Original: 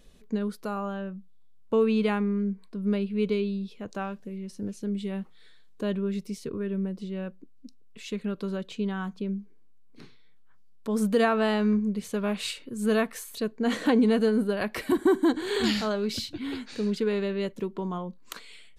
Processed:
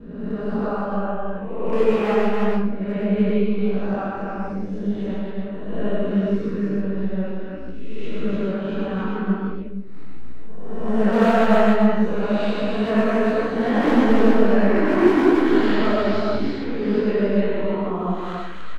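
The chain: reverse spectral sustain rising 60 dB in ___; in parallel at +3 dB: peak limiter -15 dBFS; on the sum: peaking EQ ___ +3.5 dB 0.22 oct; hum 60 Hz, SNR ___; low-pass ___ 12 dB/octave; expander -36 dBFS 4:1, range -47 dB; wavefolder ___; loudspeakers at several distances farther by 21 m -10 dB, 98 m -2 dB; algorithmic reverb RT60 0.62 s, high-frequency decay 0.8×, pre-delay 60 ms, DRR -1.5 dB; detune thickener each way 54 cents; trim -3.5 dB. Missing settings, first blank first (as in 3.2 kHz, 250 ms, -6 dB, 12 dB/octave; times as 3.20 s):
1.15 s, 840 Hz, 26 dB, 1.9 kHz, -9 dBFS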